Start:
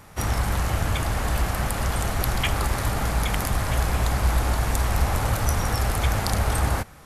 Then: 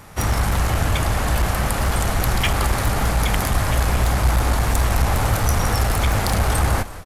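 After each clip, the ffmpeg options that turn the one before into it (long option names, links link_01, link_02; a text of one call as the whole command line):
ffmpeg -i in.wav -filter_complex "[0:a]acontrast=25,aeval=exprs='clip(val(0),-1,0.178)':channel_layout=same,asplit=4[link_01][link_02][link_03][link_04];[link_02]adelay=176,afreqshift=-77,volume=-15dB[link_05];[link_03]adelay=352,afreqshift=-154,volume=-24.4dB[link_06];[link_04]adelay=528,afreqshift=-231,volume=-33.7dB[link_07];[link_01][link_05][link_06][link_07]amix=inputs=4:normalize=0" out.wav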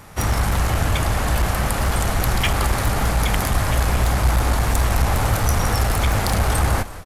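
ffmpeg -i in.wav -af anull out.wav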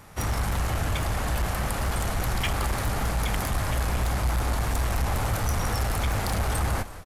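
ffmpeg -i in.wav -af "asoftclip=type=tanh:threshold=-11dB,volume=-6dB" out.wav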